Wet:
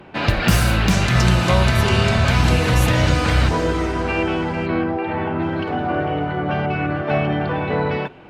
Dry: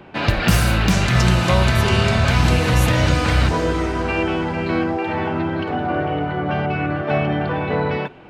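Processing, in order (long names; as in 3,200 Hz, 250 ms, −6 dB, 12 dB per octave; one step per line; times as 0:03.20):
0:04.66–0:05.42: high-frequency loss of the air 220 metres
Opus 48 kbit/s 48,000 Hz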